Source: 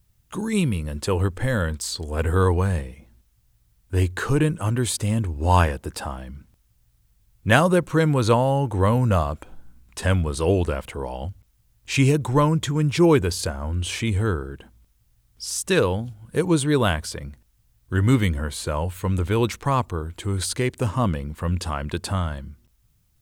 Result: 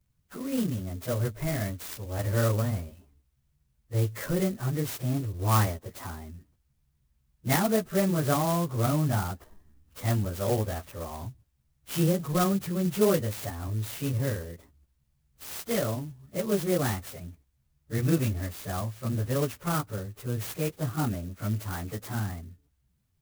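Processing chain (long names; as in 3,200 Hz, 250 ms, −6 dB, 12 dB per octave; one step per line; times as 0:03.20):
phase-vocoder pitch shift without resampling +3.5 semitones
converter with an unsteady clock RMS 0.071 ms
level −5 dB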